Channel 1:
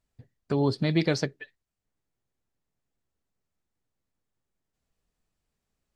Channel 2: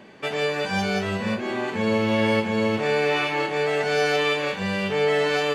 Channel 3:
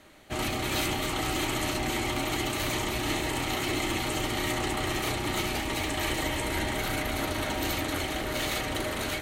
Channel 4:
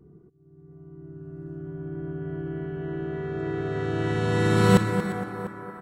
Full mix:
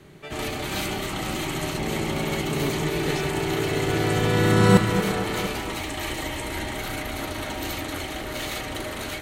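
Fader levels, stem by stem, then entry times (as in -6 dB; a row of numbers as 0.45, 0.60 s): -6.5, -11.5, -0.5, +2.0 dB; 2.00, 0.00, 0.00, 0.00 s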